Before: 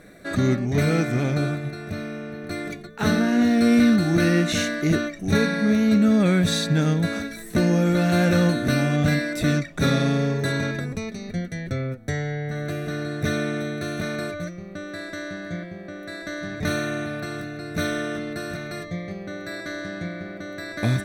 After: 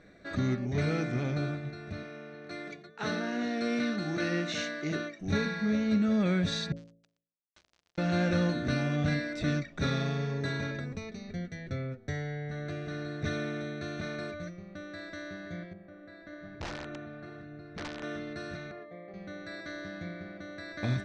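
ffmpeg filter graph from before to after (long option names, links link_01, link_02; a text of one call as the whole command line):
ffmpeg -i in.wav -filter_complex "[0:a]asettb=1/sr,asplit=3[link_01][link_02][link_03];[link_01]atrim=end=2.034[link_04];[link_02]atrim=start=2.03:end=5.21,asetpts=PTS-STARTPTS,afade=type=in:duration=0.004:curve=qsin,afade=type=out:start_time=3.176:duration=0.004:curve=qsin,highpass=frequency=140:width=0.5412,highpass=frequency=140:width=1.3066,equalizer=frequency=220:width_type=o:width=0.83:gain=-7[link_05];[link_03]atrim=start=5.206[link_06];[link_04][link_05]acrossfade=duration=0.004:curve1=hsin:curve2=qsin[link_07];[link_07][link_06]acrossfade=duration=0.004:curve1=qsin:curve2=hsin,asettb=1/sr,asplit=3[link_08][link_09][link_10];[link_08]atrim=end=6.724[link_11];[link_09]atrim=start=6.72:end=7.98,asetpts=PTS-STARTPTS,afade=type=in:duration=0.004:curve=qsin,afade=type=out:start_time=1.256:duration=0.004:curve=qsin,bandpass=frequency=5700:width_type=q:width=0.57,acrusher=bits=3:mix=0:aa=0.5,volume=35dB,asoftclip=hard,volume=-35dB[link_12];[link_10]atrim=start=7.976[link_13];[link_11][link_12]acrossfade=duration=0.004:curve1=hsin:curve2=qsin[link_14];[link_14][link_13]acrossfade=duration=0.004:curve1=qsin:curve2=hsin,asettb=1/sr,asplit=3[link_15][link_16][link_17];[link_15]atrim=end=15.734[link_18];[link_16]atrim=start=15.73:end=18.03,asetpts=PTS-STARTPTS,afade=type=in:duration=0.004:curve=qsin,afade=type=out:start_time=2.296:duration=0.004:curve=qsin,lowpass=frequency=1500:poles=1,flanger=delay=0.1:depth=4.3:regen=79:speed=1.1:shape=sinusoidal,aeval=exprs='(mod(15*val(0)+1,2)-1)/15':channel_layout=same[link_19];[link_17]atrim=start=18.026[link_20];[link_18][link_19]acrossfade=duration=0.004:curve1=hsin:curve2=qsin[link_21];[link_21][link_20]acrossfade=duration=0.004:curve1=qsin:curve2=hsin,asettb=1/sr,asplit=3[link_22][link_23][link_24];[link_22]atrim=end=18.714[link_25];[link_23]atrim=start=18.71:end=19.14,asetpts=PTS-STARTPTS,afade=type=in:duration=0.004:curve=qsin,afade=type=out:start_time=0.426:duration=0.004:curve=qsin,highpass=610,lowpass=2700,tiltshelf=frequency=890:gain=10[link_26];[link_24]atrim=start=19.136[link_27];[link_25][link_26]acrossfade=duration=0.004:curve1=hsin:curve2=qsin[link_28];[link_28][link_27]acrossfade=duration=0.004:curve1=qsin:curve2=hsin,lowpass=frequency=6000:width=0.5412,lowpass=frequency=6000:width=1.3066,equalizer=frequency=70:width_type=o:width=0.44:gain=6.5,bandreject=frequency=55.88:width_type=h:width=4,bandreject=frequency=111.76:width_type=h:width=4,bandreject=frequency=167.64:width_type=h:width=4,bandreject=frequency=223.52:width_type=h:width=4,bandreject=frequency=279.4:width_type=h:width=4,bandreject=frequency=335.28:width_type=h:width=4,bandreject=frequency=391.16:width_type=h:width=4,bandreject=frequency=447.04:width_type=h:width=4,bandreject=frequency=502.92:width_type=h:width=4,bandreject=frequency=558.8:width_type=h:width=4,bandreject=frequency=614.68:width_type=h:width=4,bandreject=frequency=670.56:width_type=h:width=4,bandreject=frequency=726.44:width_type=h:width=4,volume=-8.5dB" out.wav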